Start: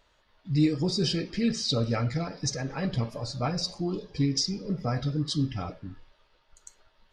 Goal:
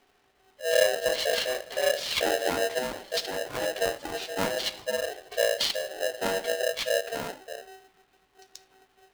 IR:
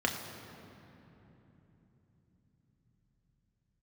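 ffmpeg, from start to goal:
-af "afreqshift=-250,asetrate=34398,aresample=44100,aeval=exprs='val(0)*sgn(sin(2*PI*570*n/s))':channel_layout=same"

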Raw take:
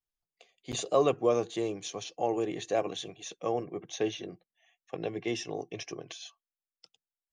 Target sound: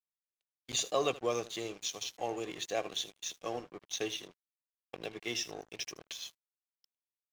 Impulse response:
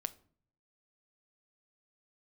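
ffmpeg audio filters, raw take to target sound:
-filter_complex "[0:a]lowpass=5100,asplit=2[link_01][link_02];[link_02]aecho=0:1:16|78:0.141|0.178[link_03];[link_01][link_03]amix=inputs=2:normalize=0,crystalizer=i=8:c=0,aeval=exprs='sgn(val(0))*max(abs(val(0))-0.00841,0)':channel_layout=same,asettb=1/sr,asplit=3[link_04][link_05][link_06];[link_04]atrim=end=3.164[link_07];[link_05]atrim=start=3.16:end=3.72,asetpts=PTS-STARTPTS,afade=type=in:duration=0.004:curve=qsin,afade=type=out:start_time=0.556:duration=0.004:curve=qsin,asplit=2[link_08][link_09];[link_09]adelay=12,volume=-10dB[link_10];[link_08][link_10]amix=inputs=2:normalize=0,atrim=end_sample=24696[link_11];[link_06]atrim=start=3.716[link_12];[link_07][link_11]acrossfade=duration=0.004:curve1=hsin:curve2=qsin[link_13];[link_13][link_12]acrossfade=duration=0.004:curve1=qsin:curve2=hsin,agate=range=-26dB:threshold=-47dB:ratio=16:detection=peak,volume=-7.5dB"

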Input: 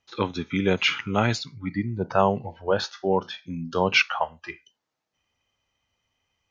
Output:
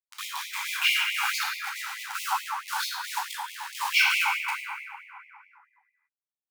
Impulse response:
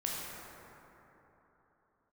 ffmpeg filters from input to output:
-filter_complex "[0:a]acrusher=bits=4:mix=0:aa=0.000001[link_01];[1:a]atrim=start_sample=2205,asetrate=57330,aresample=44100[link_02];[link_01][link_02]afir=irnorm=-1:irlink=0,afftfilt=real='re*gte(b*sr/1024,740*pow(2000/740,0.5+0.5*sin(2*PI*4.6*pts/sr)))':imag='im*gte(b*sr/1024,740*pow(2000/740,0.5+0.5*sin(2*PI*4.6*pts/sr)))':win_size=1024:overlap=0.75"

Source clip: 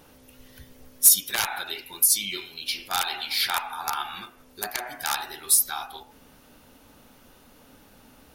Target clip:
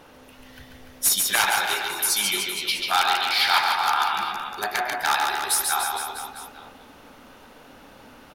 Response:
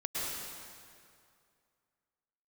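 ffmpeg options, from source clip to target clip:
-filter_complex "[0:a]asplit=2[link_01][link_02];[link_02]highpass=frequency=720:poles=1,volume=8dB,asoftclip=type=tanh:threshold=-3.5dB[link_03];[link_01][link_03]amix=inputs=2:normalize=0,lowpass=frequency=2000:poles=1,volume=-6dB,aecho=1:1:140|294|463.4|649.7|854.7:0.631|0.398|0.251|0.158|0.1,volume=5dB"

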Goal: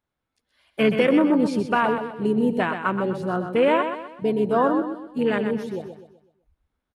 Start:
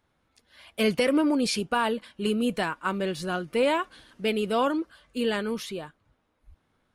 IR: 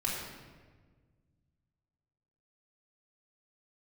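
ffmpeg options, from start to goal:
-filter_complex "[0:a]afwtdn=0.0316,asplit=2[link_01][link_02];[link_02]asetrate=29433,aresample=44100,atempo=1.49831,volume=-17dB[link_03];[link_01][link_03]amix=inputs=2:normalize=0,asplit=2[link_04][link_05];[link_05]aecho=0:1:126|252|378|504|630:0.398|0.159|0.0637|0.0255|0.0102[link_06];[link_04][link_06]amix=inputs=2:normalize=0,volume=4.5dB"

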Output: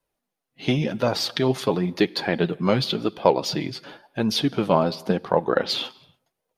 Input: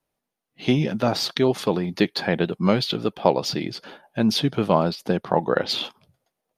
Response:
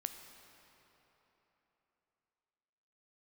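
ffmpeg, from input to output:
-filter_complex "[0:a]flanger=delay=1.9:depth=5.9:regen=42:speed=0.93:shape=sinusoidal,aeval=exprs='0.473*(cos(1*acos(clip(val(0)/0.473,-1,1)))-cos(1*PI/2))+0.015*(cos(3*acos(clip(val(0)/0.473,-1,1)))-cos(3*PI/2))':channel_layout=same,asplit=2[link_01][link_02];[1:a]atrim=start_sample=2205,afade=type=out:start_time=0.36:duration=0.01,atrim=end_sample=16317[link_03];[link_02][link_03]afir=irnorm=-1:irlink=0,volume=-9.5dB[link_04];[link_01][link_04]amix=inputs=2:normalize=0,volume=2.5dB"

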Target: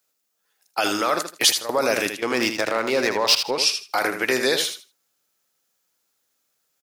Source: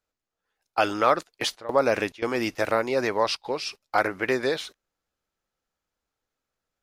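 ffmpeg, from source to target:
ffmpeg -i in.wav -filter_complex "[0:a]highpass=150,alimiter=limit=-16dB:level=0:latency=1:release=20,crystalizer=i=4:c=0,asettb=1/sr,asplit=3[link_01][link_02][link_03];[link_01]atrim=end=2.164[link_04];[link_02]atrim=start=2.16:end=3.58,asetpts=PTS-STARTPTS,afade=type=in:duration=0.004:curve=qsin,afade=type=out:start_time=1.416:duration=0.004:curve=qsin,adynamicsmooth=sensitivity=3.5:basefreq=2700[link_05];[link_03]atrim=start=3.576[link_06];[link_04][link_05]acrossfade=duration=0.004:curve1=hsin:curve2=qsin[link_07];[link_07][link_06]acrossfade=duration=0.004:curve1=qsin:curve2=hsin,asplit=2[link_08][link_09];[link_09]aecho=0:1:79|158|237:0.398|0.0756|0.0144[link_10];[link_08][link_10]amix=inputs=2:normalize=0,volume=3dB" out.wav

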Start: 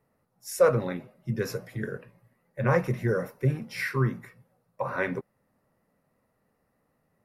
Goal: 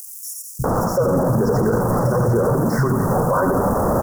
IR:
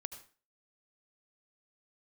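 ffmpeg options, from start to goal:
-filter_complex "[0:a]aeval=exprs='val(0)+0.5*0.0562*sgn(val(0))':channel_layout=same,acompressor=threshold=-24dB:ratio=4,atempo=1.8,asuperstop=centerf=2800:order=8:qfactor=0.64,acrossover=split=170|5400[link_01][link_02][link_03];[link_01]adelay=590[link_04];[link_02]adelay=640[link_05];[link_04][link_05][link_03]amix=inputs=3:normalize=0,asplit=2[link_06][link_07];[1:a]atrim=start_sample=2205,adelay=86[link_08];[link_07][link_08]afir=irnorm=-1:irlink=0,volume=-2.5dB[link_09];[link_06][link_09]amix=inputs=2:normalize=0,acrossover=split=2800[link_10][link_11];[link_11]acompressor=threshold=-48dB:ratio=4:attack=1:release=60[link_12];[link_10][link_12]amix=inputs=2:normalize=0,alimiter=level_in=26.5dB:limit=-1dB:release=50:level=0:latency=1,volume=-9dB"

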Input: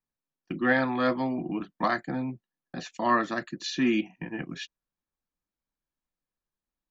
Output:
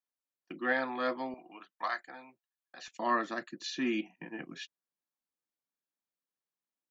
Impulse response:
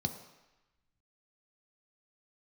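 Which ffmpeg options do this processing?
-af "asetnsamples=nb_out_samples=441:pad=0,asendcmd='1.34 highpass f 860;2.88 highpass f 240',highpass=340,volume=-5.5dB"

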